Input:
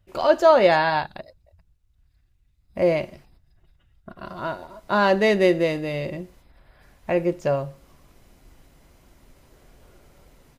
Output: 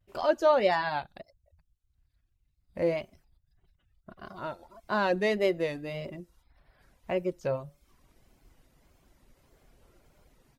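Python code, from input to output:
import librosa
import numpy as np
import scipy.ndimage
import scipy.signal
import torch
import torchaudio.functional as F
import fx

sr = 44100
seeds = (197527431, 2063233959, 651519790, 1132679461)

y = fx.dereverb_blind(x, sr, rt60_s=0.56)
y = fx.vibrato(y, sr, rate_hz=1.7, depth_cents=99.0)
y = y * 10.0 ** (-7.5 / 20.0)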